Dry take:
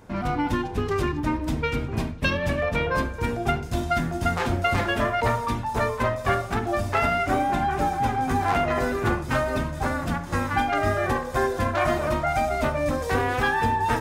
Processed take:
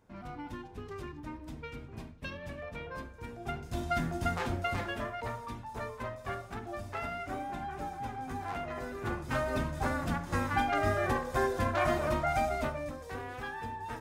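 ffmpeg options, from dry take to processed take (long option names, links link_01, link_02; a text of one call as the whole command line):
ffmpeg -i in.wav -af "volume=2.5dB,afade=type=in:start_time=3.35:duration=0.69:silence=0.281838,afade=type=out:start_time=4.04:duration=1.14:silence=0.375837,afade=type=in:start_time=8.92:duration=0.69:silence=0.354813,afade=type=out:start_time=12.43:duration=0.51:silence=0.281838" out.wav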